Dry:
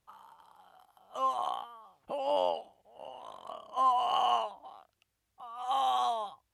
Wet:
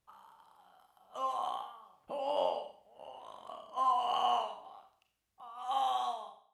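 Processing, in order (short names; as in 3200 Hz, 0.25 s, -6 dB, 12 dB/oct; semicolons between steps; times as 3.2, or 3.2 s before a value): ending faded out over 0.71 s; Schroeder reverb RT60 0.52 s, combs from 29 ms, DRR 5 dB; gain -4 dB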